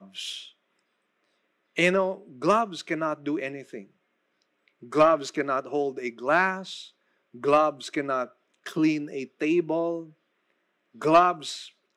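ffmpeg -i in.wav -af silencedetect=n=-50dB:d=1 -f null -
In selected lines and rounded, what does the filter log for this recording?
silence_start: 0.51
silence_end: 1.76 | silence_duration: 1.25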